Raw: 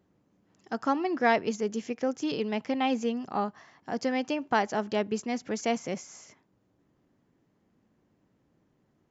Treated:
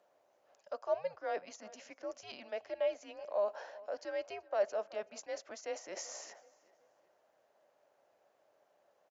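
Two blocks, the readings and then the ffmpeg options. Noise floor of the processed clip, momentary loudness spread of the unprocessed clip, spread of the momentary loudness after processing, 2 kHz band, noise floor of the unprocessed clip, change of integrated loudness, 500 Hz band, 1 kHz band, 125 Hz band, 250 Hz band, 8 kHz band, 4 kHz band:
-74 dBFS, 11 LU, 12 LU, -14.5 dB, -71 dBFS, -9.5 dB, -5.5 dB, -14.0 dB, under -25 dB, -26.0 dB, n/a, -12.0 dB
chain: -filter_complex "[0:a]areverse,acompressor=threshold=-39dB:ratio=16,areverse,afreqshift=-200,highpass=f=600:t=q:w=4.9,asplit=2[a][b];[b]adelay=379,lowpass=f=3.1k:p=1,volume=-20dB,asplit=2[c][d];[d]adelay=379,lowpass=f=3.1k:p=1,volume=0.45,asplit=2[e][f];[f]adelay=379,lowpass=f=3.1k:p=1,volume=0.45[g];[a][c][e][g]amix=inputs=4:normalize=0,volume=1.5dB"

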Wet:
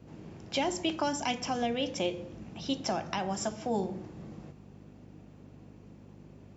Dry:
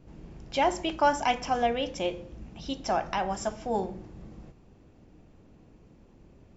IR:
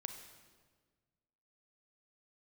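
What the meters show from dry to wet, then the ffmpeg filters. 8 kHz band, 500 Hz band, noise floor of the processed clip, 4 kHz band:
n/a, -4.0 dB, -53 dBFS, +0.5 dB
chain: -filter_complex "[0:a]aeval=exprs='val(0)+0.00398*(sin(2*PI*50*n/s)+sin(2*PI*2*50*n/s)/2+sin(2*PI*3*50*n/s)/3+sin(2*PI*4*50*n/s)/4+sin(2*PI*5*50*n/s)/5)':c=same,acrossover=split=350|3000[a][b][c];[b]acompressor=threshold=-35dB:ratio=6[d];[a][d][c]amix=inputs=3:normalize=0,highpass=120,volume=2.5dB"

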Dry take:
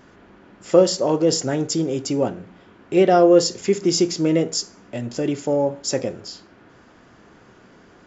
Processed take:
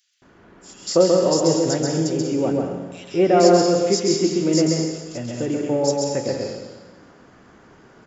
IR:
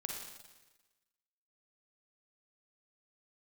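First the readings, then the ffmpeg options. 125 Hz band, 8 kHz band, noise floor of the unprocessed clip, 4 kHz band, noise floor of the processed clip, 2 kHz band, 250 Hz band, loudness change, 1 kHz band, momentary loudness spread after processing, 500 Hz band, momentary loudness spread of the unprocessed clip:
+2.0 dB, n/a, -51 dBFS, 0.0 dB, -51 dBFS, 0.0 dB, +1.0 dB, 0.0 dB, +0.5 dB, 14 LU, +0.5 dB, 15 LU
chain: -filter_complex "[0:a]acrossover=split=3100[a][b];[a]adelay=220[c];[c][b]amix=inputs=2:normalize=0,asplit=2[d][e];[1:a]atrim=start_sample=2205,adelay=134[f];[e][f]afir=irnorm=-1:irlink=0,volume=0dB[g];[d][g]amix=inputs=2:normalize=0,volume=-2dB"

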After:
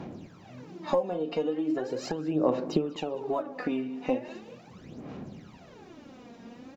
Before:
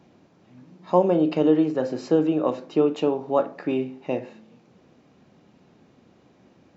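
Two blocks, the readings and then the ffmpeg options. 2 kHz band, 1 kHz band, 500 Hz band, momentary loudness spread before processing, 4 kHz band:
-2.0 dB, -6.5 dB, -7.5 dB, 9 LU, -1.5 dB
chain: -af "acompressor=threshold=-33dB:ratio=16,aphaser=in_gain=1:out_gain=1:delay=4.3:decay=0.7:speed=0.39:type=sinusoidal,aecho=1:1:194|388|582:0.0794|0.031|0.0121,volume=5.5dB"

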